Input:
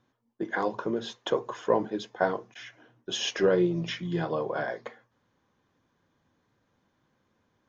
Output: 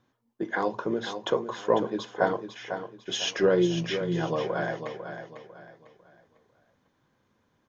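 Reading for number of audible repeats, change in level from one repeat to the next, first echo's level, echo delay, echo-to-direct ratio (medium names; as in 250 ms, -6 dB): 3, -9.5 dB, -9.0 dB, 499 ms, -8.5 dB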